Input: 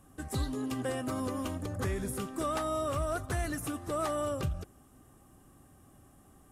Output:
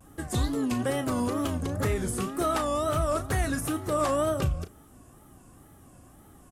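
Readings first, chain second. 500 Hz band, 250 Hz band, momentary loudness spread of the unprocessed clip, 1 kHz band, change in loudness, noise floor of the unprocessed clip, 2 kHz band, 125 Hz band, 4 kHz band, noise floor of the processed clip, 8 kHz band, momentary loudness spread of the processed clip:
+6.0 dB, +6.5 dB, 5 LU, +6.0 dB, +6.0 dB, -60 dBFS, +5.5 dB, +6.0 dB, +6.0 dB, -54 dBFS, +6.0 dB, 4 LU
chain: doubling 34 ms -10.5 dB; wow and flutter 140 cents; trim +5.5 dB

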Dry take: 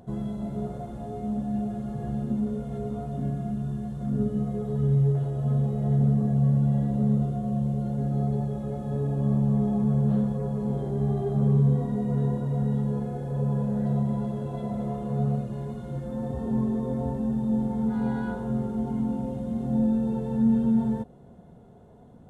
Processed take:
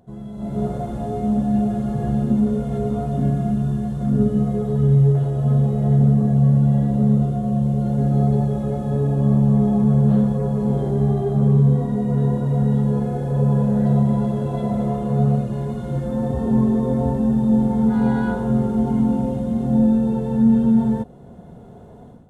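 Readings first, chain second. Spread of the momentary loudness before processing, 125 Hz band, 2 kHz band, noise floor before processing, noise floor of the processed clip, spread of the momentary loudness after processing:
9 LU, +7.5 dB, no reading, -49 dBFS, -41 dBFS, 7 LU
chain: level rider gain up to 15 dB; trim -5 dB

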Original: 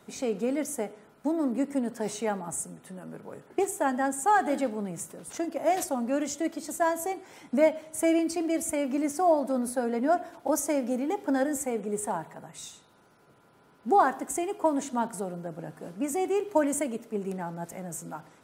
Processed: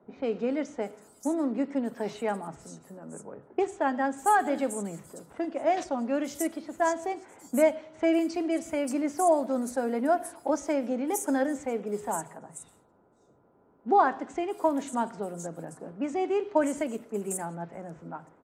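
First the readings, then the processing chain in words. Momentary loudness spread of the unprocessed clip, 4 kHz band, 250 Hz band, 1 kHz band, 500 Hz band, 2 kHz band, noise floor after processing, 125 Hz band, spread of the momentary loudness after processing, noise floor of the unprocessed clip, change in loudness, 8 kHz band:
14 LU, -2.0 dB, -0.5 dB, 0.0 dB, 0.0 dB, 0.0 dB, -63 dBFS, -2.0 dB, 18 LU, -60 dBFS, 0.0 dB, -4.5 dB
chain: level-controlled noise filter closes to 700 Hz, open at -24.5 dBFS; three bands offset in time mids, lows, highs 30/580 ms, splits 150/5800 Hz

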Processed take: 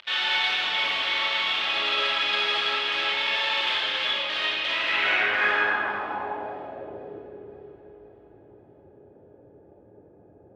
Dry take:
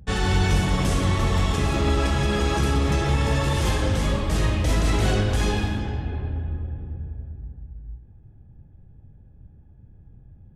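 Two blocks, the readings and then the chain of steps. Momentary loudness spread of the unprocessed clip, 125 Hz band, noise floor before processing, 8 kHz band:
14 LU, under -30 dB, -50 dBFS, under -10 dB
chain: tracing distortion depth 0.18 ms; in parallel at 0 dB: upward compressor, threshold -23 dBFS; on the sum: high-pass 65 Hz; on a send: echo whose repeats swap between lows and highs 264 ms, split 1 kHz, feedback 74%, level -13.5 dB; on the sum: simulated room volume 2000 m³, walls mixed, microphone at 2.7 m; dynamic bell 230 Hz, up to +6 dB, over -29 dBFS, Q 1.6; band-pass sweep 3.4 kHz -> 420 Hz, 4.64–7.31 s; three-band isolator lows -19 dB, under 430 Hz, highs -22 dB, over 3.9 kHz; trim +5.5 dB

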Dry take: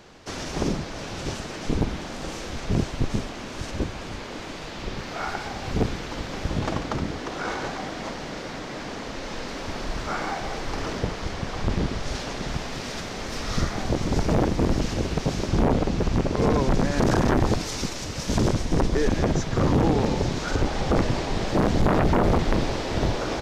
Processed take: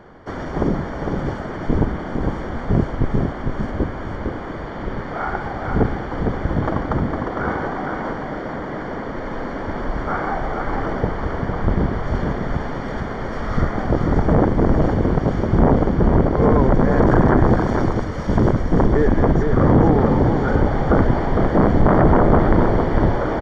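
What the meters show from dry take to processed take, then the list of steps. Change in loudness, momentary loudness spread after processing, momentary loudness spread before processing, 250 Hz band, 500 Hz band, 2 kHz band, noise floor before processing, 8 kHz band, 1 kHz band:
+7.0 dB, 13 LU, 12 LU, +7.0 dB, +7.0 dB, +4.0 dB, -35 dBFS, under -10 dB, +7.0 dB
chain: Savitzky-Golay filter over 41 samples; on a send: delay 456 ms -5 dB; on the sum: trim +6 dB

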